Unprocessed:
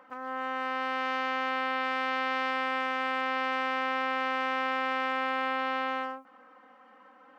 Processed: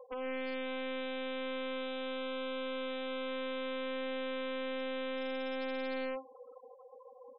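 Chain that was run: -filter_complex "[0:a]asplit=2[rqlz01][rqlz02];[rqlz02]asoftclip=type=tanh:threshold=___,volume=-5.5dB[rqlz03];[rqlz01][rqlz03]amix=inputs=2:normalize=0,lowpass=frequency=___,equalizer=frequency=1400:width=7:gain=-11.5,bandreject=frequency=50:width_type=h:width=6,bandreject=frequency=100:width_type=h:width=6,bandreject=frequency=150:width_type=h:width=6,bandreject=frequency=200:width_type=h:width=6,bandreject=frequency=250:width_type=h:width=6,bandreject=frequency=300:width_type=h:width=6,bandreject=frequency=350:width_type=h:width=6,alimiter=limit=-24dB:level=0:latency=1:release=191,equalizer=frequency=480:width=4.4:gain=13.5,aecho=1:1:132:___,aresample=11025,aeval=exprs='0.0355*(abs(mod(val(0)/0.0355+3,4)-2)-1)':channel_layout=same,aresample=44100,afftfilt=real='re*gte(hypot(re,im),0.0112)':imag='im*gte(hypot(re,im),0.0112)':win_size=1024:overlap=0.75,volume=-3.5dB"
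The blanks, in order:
-26dB, 2100, 0.0794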